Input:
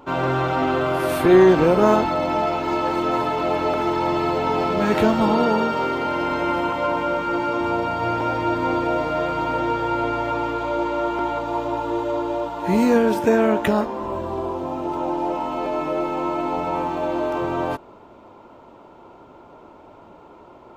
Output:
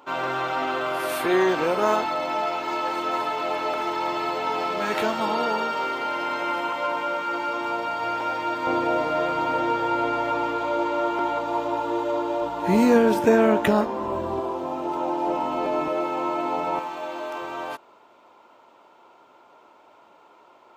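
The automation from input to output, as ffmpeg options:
-af "asetnsamples=n=441:p=0,asendcmd='8.67 highpass f 300;12.42 highpass f 94;14.4 highpass f 340;15.27 highpass f 130;15.88 highpass f 400;16.79 highpass f 1500',highpass=f=940:p=1"

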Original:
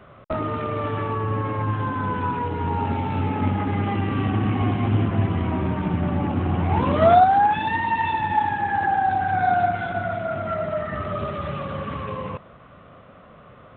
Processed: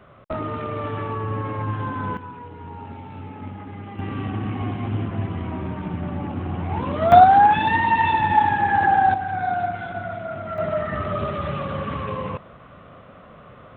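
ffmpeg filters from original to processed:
-af "asetnsamples=n=441:p=0,asendcmd='2.17 volume volume -12.5dB;3.99 volume volume -5dB;7.12 volume volume 4dB;9.14 volume volume -4dB;10.58 volume volume 2dB',volume=0.794"

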